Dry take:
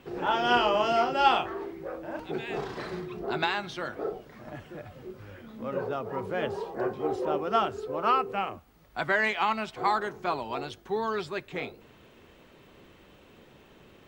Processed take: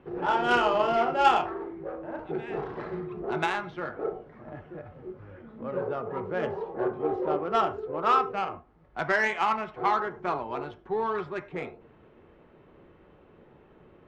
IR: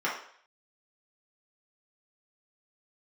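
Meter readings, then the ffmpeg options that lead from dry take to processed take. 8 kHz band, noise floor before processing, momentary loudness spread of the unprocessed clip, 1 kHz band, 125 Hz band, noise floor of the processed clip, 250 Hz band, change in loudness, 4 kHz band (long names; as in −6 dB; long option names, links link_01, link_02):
can't be measured, −56 dBFS, 19 LU, +1.0 dB, +0.5 dB, −57 dBFS, +0.5 dB, +0.5 dB, −4.5 dB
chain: -filter_complex "[0:a]adynamicsmooth=sensitivity=1:basefreq=1500,asplit=2[link_01][link_02];[1:a]atrim=start_sample=2205,afade=type=out:start_time=0.16:duration=0.01,atrim=end_sample=7497[link_03];[link_02][link_03]afir=irnorm=-1:irlink=0,volume=-16dB[link_04];[link_01][link_04]amix=inputs=2:normalize=0"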